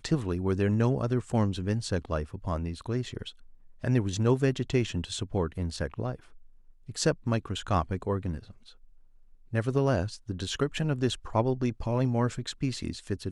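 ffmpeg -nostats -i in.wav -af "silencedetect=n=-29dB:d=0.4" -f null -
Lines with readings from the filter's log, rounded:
silence_start: 3.22
silence_end: 3.84 | silence_duration: 0.62
silence_start: 6.15
silence_end: 6.97 | silence_duration: 0.83
silence_start: 8.37
silence_end: 9.54 | silence_duration: 1.16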